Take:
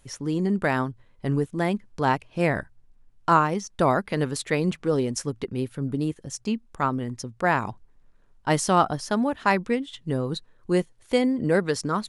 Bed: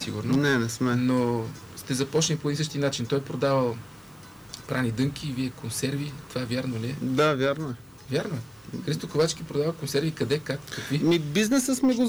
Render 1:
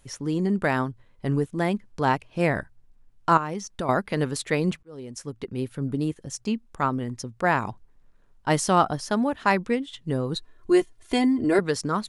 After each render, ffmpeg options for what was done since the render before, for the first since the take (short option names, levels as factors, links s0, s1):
-filter_complex "[0:a]asettb=1/sr,asplit=3[s0][s1][s2];[s0]atrim=end=3.374[s3];[s1]atrim=start=3.37:end=3.89,asetpts=PTS-STARTPTS,afade=t=in:d=0.004:c=qsin,afade=t=out:st=0.516:d=0.004:c=qsin,acompressor=threshold=0.0501:ratio=4:attack=3.2:release=140:knee=1:detection=peak[s4];[s2]atrim=start=3.886[s5];[s3][s4]acrossfade=d=0.004:c1=hsin:c2=qsin[s6];[s6][s5]acrossfade=d=0.004:c1=qsin:c2=hsin,asettb=1/sr,asplit=3[s7][s8][s9];[s7]atrim=end=10.354[s10];[s8]atrim=start=10.35:end=11.59,asetpts=PTS-STARTPTS,afade=t=in:d=0.004:c=qsin,afade=t=out:st=1.236:d=0.004:c=qsin,aecho=1:1:2.9:0.9,atrim=end_sample=54684[s11];[s9]atrim=start=11.586[s12];[s10][s11]acrossfade=d=0.004:c1=hsin:c2=qsin[s13];[s13][s12]acrossfade=d=0.004:c1=qsin:c2=hsin,asplit=2[s14][s15];[s14]atrim=end=4.83,asetpts=PTS-STARTPTS,afade=t=out:st=4.826:d=0.004:c=hsin[s16];[s15]atrim=start=4.83,asetpts=PTS-STARTPTS,afade=t=in:d=0.89[s17];[s16][s17]concat=n=2:v=0:a=1"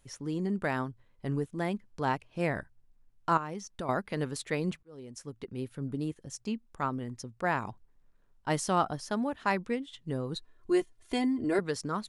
-af "volume=0.422"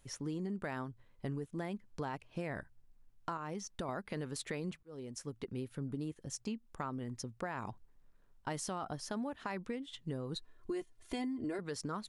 -af "alimiter=limit=0.0708:level=0:latency=1:release=20,acompressor=threshold=0.0158:ratio=6"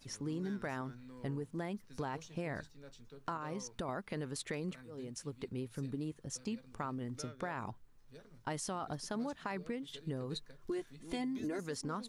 -filter_complex "[1:a]volume=0.0335[s0];[0:a][s0]amix=inputs=2:normalize=0"